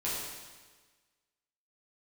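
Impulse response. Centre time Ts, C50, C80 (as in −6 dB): 90 ms, −0.5 dB, 2.0 dB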